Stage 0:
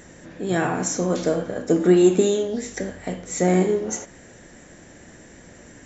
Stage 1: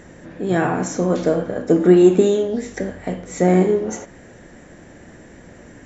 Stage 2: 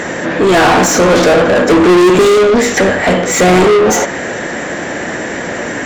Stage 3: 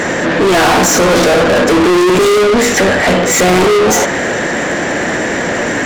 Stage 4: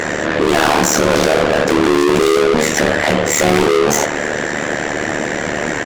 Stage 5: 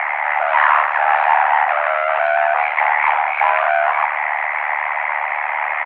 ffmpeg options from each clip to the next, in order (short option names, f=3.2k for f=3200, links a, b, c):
-af "highshelf=f=3.5k:g=-11,volume=4dB"
-filter_complex "[0:a]asplit=2[a][b];[b]highpass=f=720:p=1,volume=36dB,asoftclip=type=tanh:threshold=-1dB[c];[a][c]amix=inputs=2:normalize=0,lowpass=f=4.3k:p=1,volume=-6dB"
-af "acontrast=47,asoftclip=type=tanh:threshold=-7.5dB"
-filter_complex "[0:a]tremolo=f=75:d=0.974,asplit=2[a][b];[b]adelay=22,volume=-12dB[c];[a][c]amix=inputs=2:normalize=0"
-af "acompressor=mode=upward:threshold=-20dB:ratio=2.5,highpass=f=480:t=q:w=0.5412,highpass=f=480:t=q:w=1.307,lowpass=f=2.1k:t=q:w=0.5176,lowpass=f=2.1k:t=q:w=0.7071,lowpass=f=2.1k:t=q:w=1.932,afreqshift=270,volume=1.5dB"